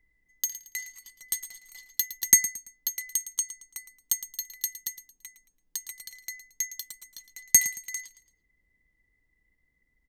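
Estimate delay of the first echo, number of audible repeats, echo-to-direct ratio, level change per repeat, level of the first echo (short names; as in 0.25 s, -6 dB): 0.112 s, 3, -13.5 dB, -9.5 dB, -14.0 dB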